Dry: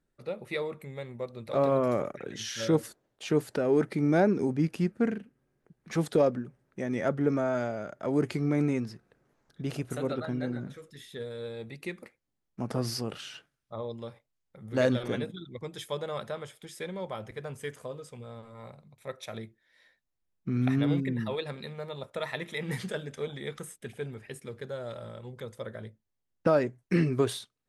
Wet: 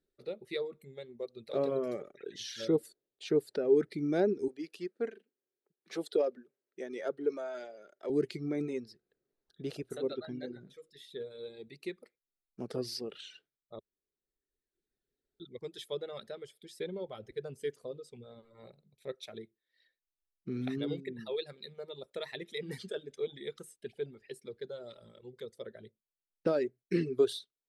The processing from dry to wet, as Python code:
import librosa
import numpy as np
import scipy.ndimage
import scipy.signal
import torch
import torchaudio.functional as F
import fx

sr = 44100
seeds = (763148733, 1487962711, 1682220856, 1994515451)

y = fx.highpass(x, sr, hz=380.0, slope=12, at=(4.48, 8.1))
y = fx.low_shelf(y, sr, hz=480.0, db=5.0, at=(16.8, 19.15))
y = fx.edit(y, sr, fx.room_tone_fill(start_s=13.79, length_s=1.61), tone=tone)
y = fx.notch(y, sr, hz=6700.0, q=25.0)
y = fx.dereverb_blind(y, sr, rt60_s=1.5)
y = fx.graphic_eq_15(y, sr, hz=(100, 400, 1000, 4000), db=(-6, 11, -6, 9))
y = F.gain(torch.from_numpy(y), -8.5).numpy()